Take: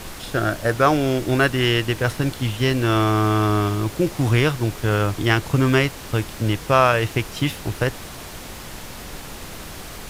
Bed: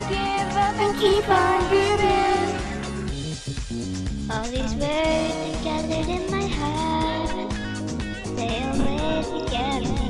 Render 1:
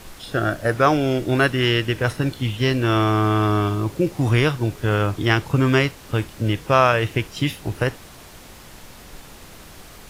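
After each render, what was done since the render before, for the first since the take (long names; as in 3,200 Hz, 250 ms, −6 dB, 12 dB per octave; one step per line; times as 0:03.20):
noise reduction from a noise print 7 dB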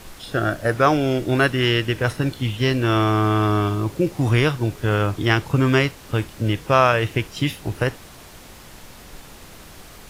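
no processing that can be heard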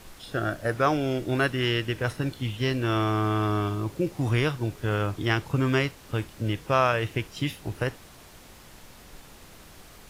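level −6.5 dB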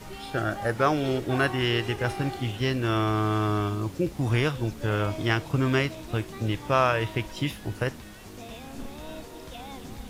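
mix in bed −16.5 dB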